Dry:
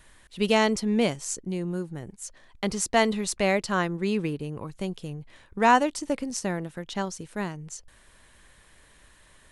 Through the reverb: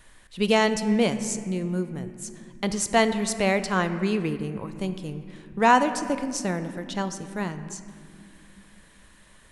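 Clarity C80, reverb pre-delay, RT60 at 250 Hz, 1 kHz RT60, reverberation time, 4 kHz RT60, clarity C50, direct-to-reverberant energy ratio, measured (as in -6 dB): 11.5 dB, 4 ms, 4.4 s, 2.2 s, 2.5 s, 1.6 s, 11.0 dB, 9.5 dB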